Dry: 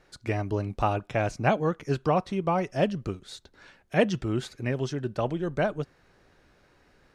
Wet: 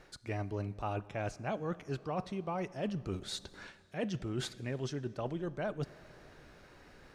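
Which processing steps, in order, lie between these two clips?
reverse; compression 6:1, threshold -39 dBFS, peak gain reduction 21 dB; reverse; reverberation RT60 2.6 s, pre-delay 33 ms, DRR 18 dB; trim +4 dB

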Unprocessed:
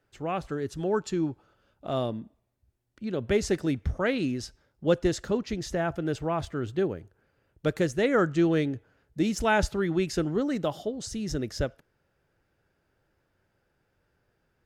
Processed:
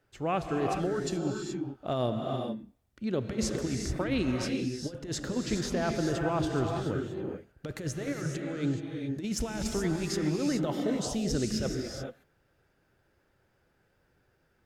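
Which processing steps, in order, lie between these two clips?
compressor with a negative ratio -28 dBFS, ratio -0.5; gated-style reverb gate 450 ms rising, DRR 2 dB; trim -2 dB

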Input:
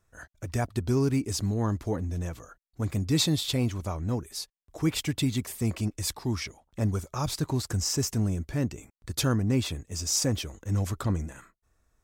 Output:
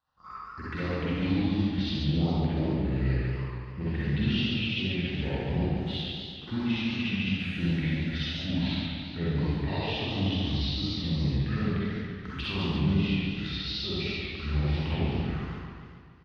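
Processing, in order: companding laws mixed up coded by A; frequency weighting D; compression 5:1, threshold -31 dBFS, peak gain reduction 16.5 dB; touch-sensitive phaser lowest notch 520 Hz, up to 2.3 kHz, full sweep at -30.5 dBFS; distance through air 200 m; frequency-shifting echo 285 ms, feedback 35%, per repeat +34 Hz, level -22 dB; Schroeder reverb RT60 0.88 s, combs from 31 ms, DRR -8 dB; speed mistake 45 rpm record played at 33 rpm; modulated delay 142 ms, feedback 61%, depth 127 cents, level -5 dB

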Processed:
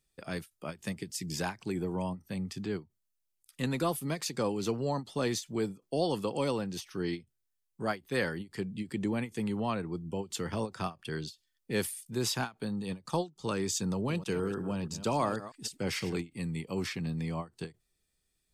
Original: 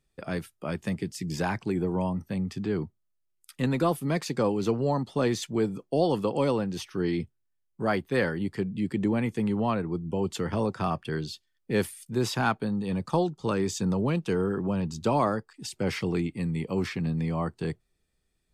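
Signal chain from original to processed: 13.92–16.23 s: chunks repeated in reverse 160 ms, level -12 dB; treble shelf 3 kHz +10.5 dB; endings held to a fixed fall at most 290 dB/s; trim -6 dB

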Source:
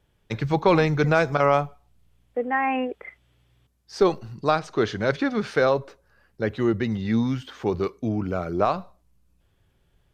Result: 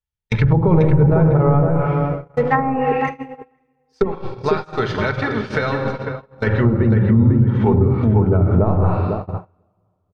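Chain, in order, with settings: companding laws mixed up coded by A; peaking EQ 410 Hz -9.5 dB 1.4 oct; simulated room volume 3300 m³, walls mixed, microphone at 1.5 m; 4.03–6.47 s: compression 20:1, threshold -30 dBFS, peak gain reduction 13 dB; peaking EQ 90 Hz +5.5 dB 1.9 oct; low-pass that closes with the level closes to 450 Hz, closed at -20.5 dBFS; hum notches 50/100/150/200/250/300/350 Hz; tape echo 501 ms, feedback 32%, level -4 dB, low-pass 1.3 kHz; gate -33 dBFS, range -32 dB; comb 2.2 ms, depth 36%; loudness maximiser +17.5 dB; trim -4.5 dB

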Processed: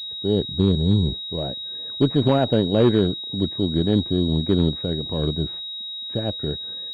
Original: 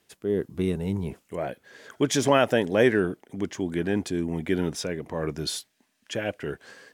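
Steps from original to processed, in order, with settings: tilt EQ -4.5 dB/octave; vibrato 3.4 Hz 89 cents; Chebyshev shaper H 2 -19 dB, 7 -38 dB, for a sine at -7 dBFS; class-D stage that switches slowly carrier 3.8 kHz; trim -3 dB

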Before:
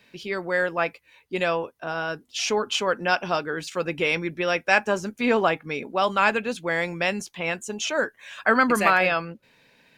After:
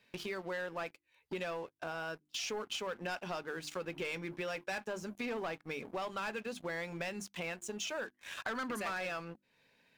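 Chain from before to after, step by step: hum notches 50/100/150/200/250/300/350 Hz; waveshaping leveller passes 3; compression 4:1, threshold -36 dBFS, peak gain reduction 21.5 dB; trim -5.5 dB

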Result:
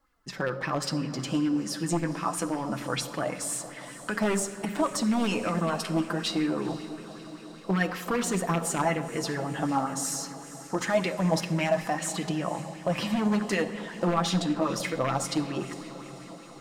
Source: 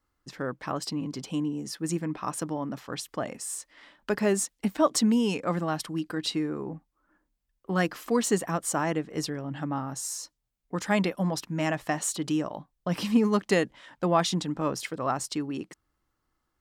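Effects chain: 11.94–13.08 s: treble shelf 4.4 kHz -6 dB; in parallel at +1.5 dB: compression 6:1, threshold -32 dBFS, peak gain reduction 14.5 dB; on the sum: peak limiter -17 dBFS, peak gain reduction 8 dB; flange 0.25 Hz, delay 3.6 ms, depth 8.4 ms, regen +25%; wavefolder -21.5 dBFS; echo that smears into a reverb 488 ms, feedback 68%, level -15.5 dB; simulated room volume 1700 m³, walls mixed, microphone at 0.72 m; sweeping bell 5.2 Hz 620–2600 Hz +9 dB

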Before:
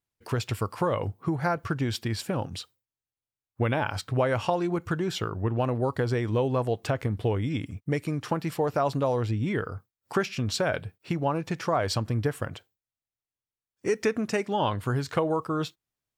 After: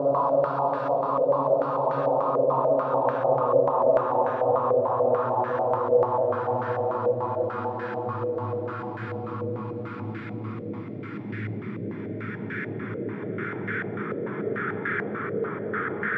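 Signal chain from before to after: tilt EQ +3 dB/octave; Paulstretch 25×, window 0.50 s, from 8.94 s; step-sequenced low-pass 6.8 Hz 540–1600 Hz

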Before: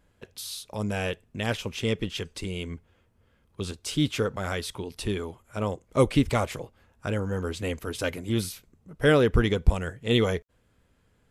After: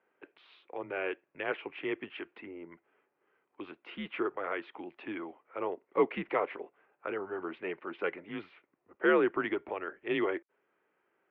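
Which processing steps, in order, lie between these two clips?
mistuned SSB -88 Hz 430–2600 Hz; 2.26–2.72 s: low-pass that closes with the level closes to 960 Hz, closed at -38.5 dBFS; trim -2.5 dB

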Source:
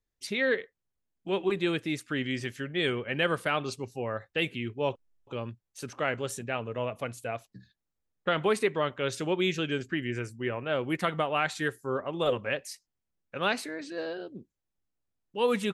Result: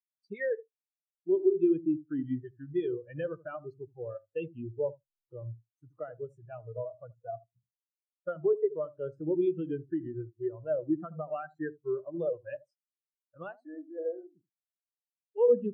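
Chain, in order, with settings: treble shelf 3.1 kHz -9.5 dB; compression 6:1, threshold -29 dBFS, peak gain reduction 8 dB; treble shelf 6.3 kHz +4.5 dB; on a send: filtered feedback delay 78 ms, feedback 23%, low-pass 800 Hz, level -6 dB; on the sum: spectral noise reduction 11 dB; spectral contrast expander 2.5:1; trim +5 dB

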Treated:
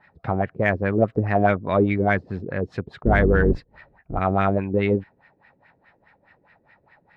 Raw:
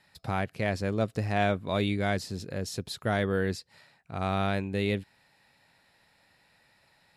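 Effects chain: 3.03–4.19 s: octave divider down 2 oct, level +4 dB; LFO low-pass sine 4.8 Hz 350–2100 Hz; Chebyshev shaper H 6 -41 dB, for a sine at -11.5 dBFS; trim +6 dB

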